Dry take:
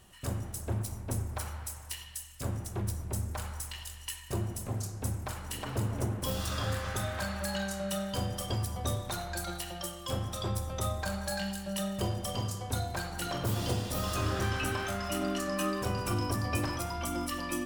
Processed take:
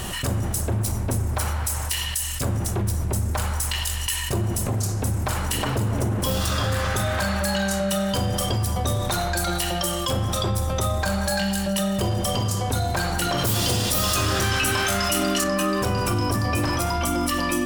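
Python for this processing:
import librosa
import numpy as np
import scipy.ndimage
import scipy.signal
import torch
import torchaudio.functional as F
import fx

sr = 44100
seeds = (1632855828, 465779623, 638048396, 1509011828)

y = fx.high_shelf(x, sr, hz=2100.0, db=9.5, at=(13.38, 15.44))
y = 10.0 ** (-17.5 / 20.0) * np.tanh(y / 10.0 ** (-17.5 / 20.0))
y = fx.env_flatten(y, sr, amount_pct=70)
y = F.gain(torch.from_numpy(y), 6.0).numpy()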